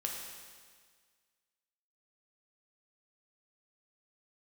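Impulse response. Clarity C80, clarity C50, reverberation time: 4.0 dB, 2.5 dB, 1.7 s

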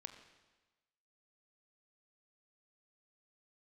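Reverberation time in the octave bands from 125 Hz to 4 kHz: 1.2 s, 1.2 s, 1.2 s, 1.2 s, 1.2 s, 1.2 s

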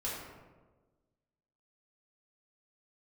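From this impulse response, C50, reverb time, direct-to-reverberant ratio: 0.5 dB, 1.3 s, -8.0 dB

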